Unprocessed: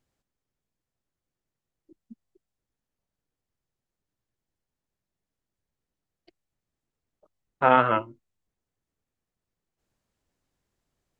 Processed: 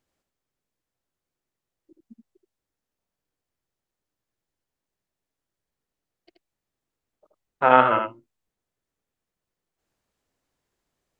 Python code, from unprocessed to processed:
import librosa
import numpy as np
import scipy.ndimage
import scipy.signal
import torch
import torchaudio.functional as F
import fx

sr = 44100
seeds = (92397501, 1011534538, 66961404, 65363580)

y = fx.bass_treble(x, sr, bass_db=-6, treble_db=-1)
y = y + 10.0 ** (-5.5 / 20.0) * np.pad(y, (int(78 * sr / 1000.0), 0))[:len(y)]
y = F.gain(torch.from_numpy(y), 1.5).numpy()